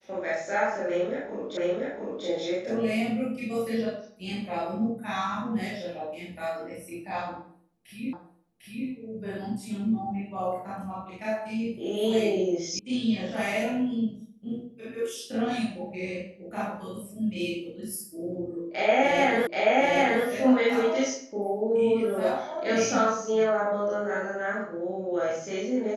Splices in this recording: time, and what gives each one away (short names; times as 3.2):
1.57 repeat of the last 0.69 s
8.13 repeat of the last 0.75 s
12.79 sound cut off
19.47 repeat of the last 0.78 s